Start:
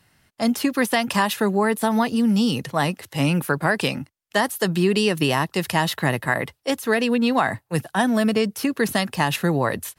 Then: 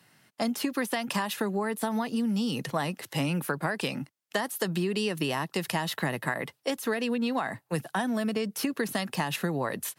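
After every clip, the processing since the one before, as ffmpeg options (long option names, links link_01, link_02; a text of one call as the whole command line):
ffmpeg -i in.wav -af "highpass=frequency=130:width=0.5412,highpass=frequency=130:width=1.3066,acompressor=threshold=-26dB:ratio=6" out.wav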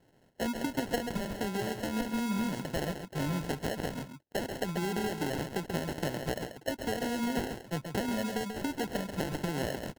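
ffmpeg -i in.wav -af "acrusher=samples=37:mix=1:aa=0.000001,aecho=1:1:136:0.398,volume=-4.5dB" out.wav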